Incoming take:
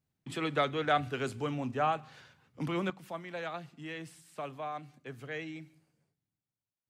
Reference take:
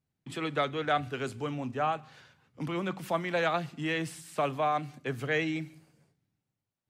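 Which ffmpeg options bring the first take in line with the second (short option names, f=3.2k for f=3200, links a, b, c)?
-af "asetnsamples=n=441:p=0,asendcmd='2.9 volume volume 10.5dB',volume=0dB"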